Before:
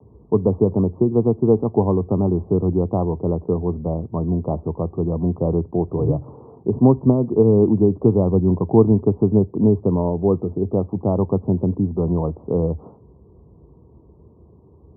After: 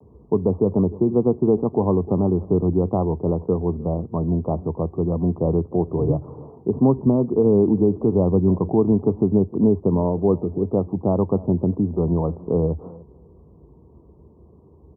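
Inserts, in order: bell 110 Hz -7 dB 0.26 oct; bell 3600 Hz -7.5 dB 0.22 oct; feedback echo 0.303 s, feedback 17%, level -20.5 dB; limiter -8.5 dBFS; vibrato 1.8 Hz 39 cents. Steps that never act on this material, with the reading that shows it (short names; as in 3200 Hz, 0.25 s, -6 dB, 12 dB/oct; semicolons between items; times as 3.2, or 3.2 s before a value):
bell 3600 Hz: input band ends at 1100 Hz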